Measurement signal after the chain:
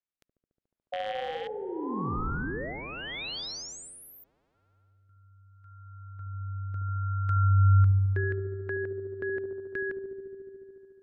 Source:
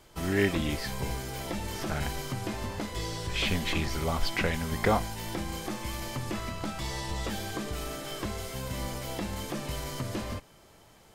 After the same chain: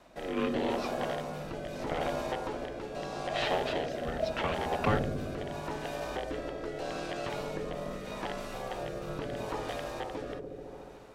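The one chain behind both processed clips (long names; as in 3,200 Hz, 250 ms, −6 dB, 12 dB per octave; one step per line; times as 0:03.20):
loose part that buzzes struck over −31 dBFS, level −23 dBFS
ring modulation 640 Hz
in parallel at +0.5 dB: downward compressor, threshold −45 dBFS
on the sum: low-pass filter 2,800 Hz 6 dB per octave
on a send: delay with a low-pass on its return 72 ms, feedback 84%, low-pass 530 Hz, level −4.5 dB
on the sum: rotating-speaker cabinet horn 0.8 Hz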